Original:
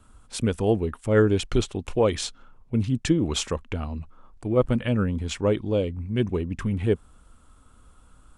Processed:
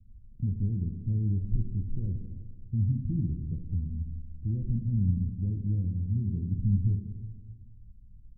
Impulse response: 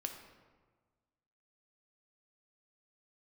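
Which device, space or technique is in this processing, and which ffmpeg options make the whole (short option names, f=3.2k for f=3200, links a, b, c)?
club heard from the street: -filter_complex "[0:a]alimiter=limit=-17.5dB:level=0:latency=1,lowpass=f=180:w=0.5412,lowpass=f=180:w=1.3066[a];[1:a]atrim=start_sample=2205[b];[a][b]afir=irnorm=-1:irlink=0,volume=3.5dB"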